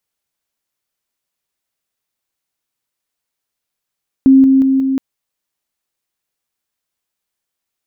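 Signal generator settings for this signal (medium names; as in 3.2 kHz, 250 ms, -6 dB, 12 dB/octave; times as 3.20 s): level ladder 267 Hz -3.5 dBFS, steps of -3 dB, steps 4, 0.18 s 0.00 s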